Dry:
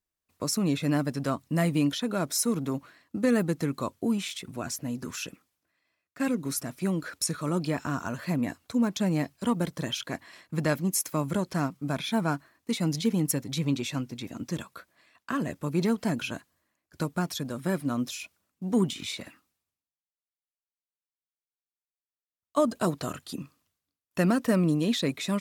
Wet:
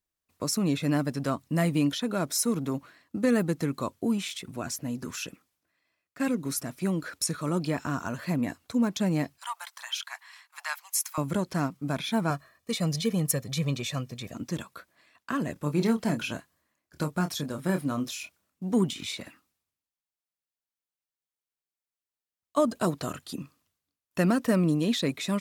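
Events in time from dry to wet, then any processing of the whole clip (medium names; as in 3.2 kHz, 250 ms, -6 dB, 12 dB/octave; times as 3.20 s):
9.38–11.18 s: steep high-pass 830 Hz 48 dB/octave
12.30–14.35 s: comb 1.7 ms
15.53–18.63 s: doubling 27 ms -8 dB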